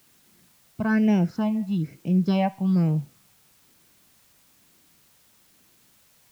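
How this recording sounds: phasing stages 6, 1.1 Hz, lowest notch 360–1300 Hz; a quantiser's noise floor 10-bit, dither triangular

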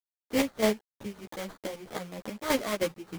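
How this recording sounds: a quantiser's noise floor 8-bit, dither none; chopped level 3.2 Hz, depth 65%, duty 30%; aliases and images of a low sample rate 2.7 kHz, jitter 20%; a shimmering, thickened sound

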